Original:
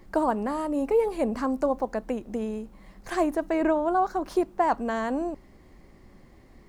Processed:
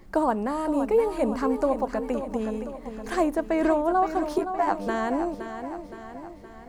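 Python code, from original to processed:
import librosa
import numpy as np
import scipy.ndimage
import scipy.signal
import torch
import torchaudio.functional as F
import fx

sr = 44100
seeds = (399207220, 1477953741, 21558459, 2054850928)

p1 = fx.robotise(x, sr, hz=99.0, at=(4.38, 4.87))
p2 = p1 + fx.echo_feedback(p1, sr, ms=518, feedback_pct=53, wet_db=-9.5, dry=0)
y = F.gain(torch.from_numpy(p2), 1.0).numpy()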